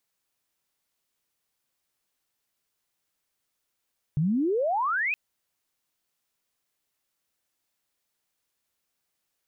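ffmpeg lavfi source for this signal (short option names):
-f lavfi -i "aevalsrc='pow(10,(-21-3*t/0.97)/20)*sin(2*PI*140*0.97/log(2600/140)*(exp(log(2600/140)*t/0.97)-1))':d=0.97:s=44100"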